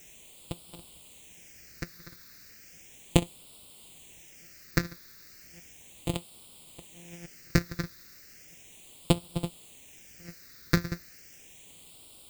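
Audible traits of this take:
a buzz of ramps at a fixed pitch in blocks of 256 samples
chopped level 1.3 Hz, depth 60%, duty 45%
a quantiser's noise floor 10 bits, dither triangular
phaser sweep stages 6, 0.35 Hz, lowest notch 800–1,700 Hz

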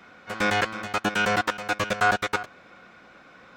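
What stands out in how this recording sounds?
background noise floor −52 dBFS
spectral slope −3.5 dB per octave

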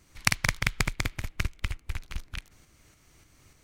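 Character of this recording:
tremolo saw up 3.4 Hz, depth 45%

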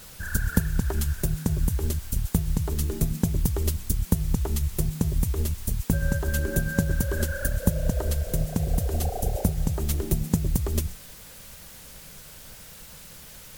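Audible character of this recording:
tremolo triangle 9.3 Hz, depth 40%
a quantiser's noise floor 8 bits, dither triangular
MP3

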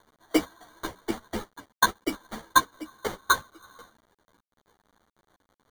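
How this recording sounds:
a quantiser's noise floor 10 bits, dither none
tremolo saw down 3.3 Hz, depth 50%
aliases and images of a low sample rate 2,600 Hz, jitter 0%
a shimmering, thickened sound

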